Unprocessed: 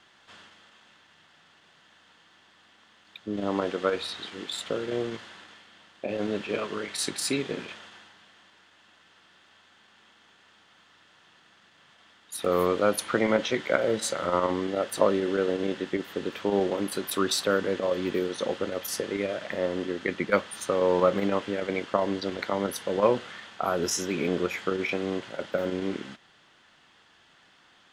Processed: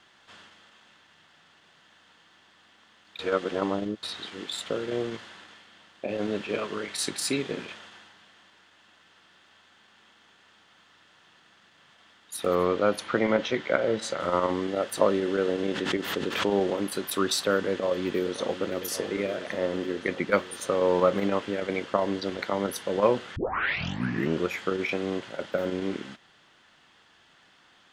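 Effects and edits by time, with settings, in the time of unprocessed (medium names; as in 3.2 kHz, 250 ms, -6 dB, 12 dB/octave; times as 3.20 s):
3.19–4.03 s: reverse
12.55–14.20 s: distance through air 72 m
15.45–16.78 s: swell ahead of each attack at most 58 dB/s
17.69–18.65 s: echo throw 560 ms, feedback 75%, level -11 dB
23.36 s: tape start 1.07 s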